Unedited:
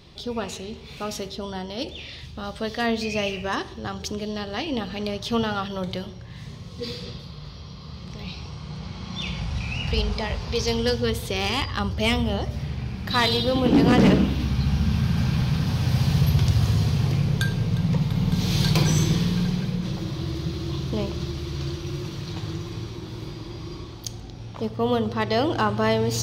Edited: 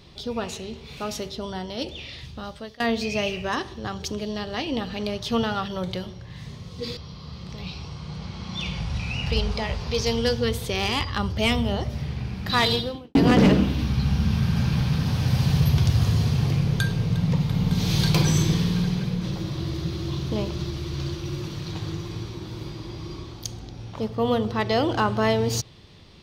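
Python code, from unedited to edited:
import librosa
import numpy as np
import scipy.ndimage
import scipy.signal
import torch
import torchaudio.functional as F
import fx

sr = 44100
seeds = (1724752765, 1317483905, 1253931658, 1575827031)

y = fx.edit(x, sr, fx.fade_out_to(start_s=2.31, length_s=0.49, floor_db=-22.5),
    fx.cut(start_s=6.97, length_s=0.61),
    fx.fade_out_span(start_s=13.35, length_s=0.41, curve='qua'), tone=tone)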